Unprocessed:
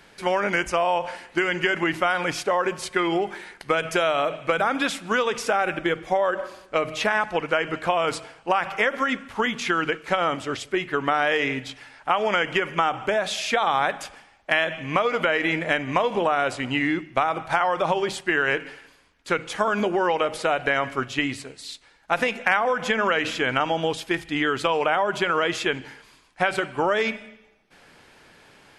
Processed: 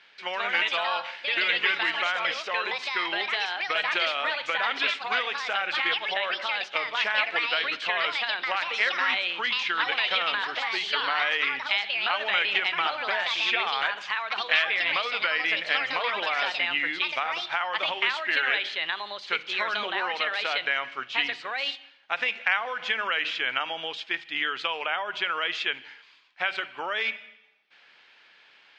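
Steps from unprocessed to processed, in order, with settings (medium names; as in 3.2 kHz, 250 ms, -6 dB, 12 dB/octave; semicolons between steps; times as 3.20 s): ever faster or slower copies 190 ms, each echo +4 st, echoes 2; band-pass filter 3.3 kHz, Q 1.2; distance through air 170 m; trim +4.5 dB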